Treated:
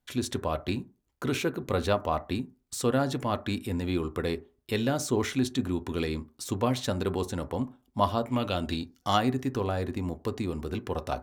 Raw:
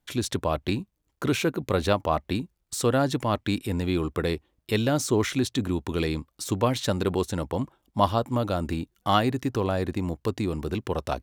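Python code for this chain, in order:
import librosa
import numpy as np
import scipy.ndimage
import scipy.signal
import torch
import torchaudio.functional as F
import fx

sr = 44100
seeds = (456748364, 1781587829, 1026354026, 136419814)

y = fx.peak_eq(x, sr, hz=fx.line((8.23, 2000.0), (9.16, 6600.0)), db=14.0, octaves=0.76, at=(8.23, 9.16), fade=0.02)
y = fx.rev_fdn(y, sr, rt60_s=0.35, lf_ratio=0.85, hf_ratio=0.35, size_ms=24.0, drr_db=9.5)
y = y * librosa.db_to_amplitude(-4.0)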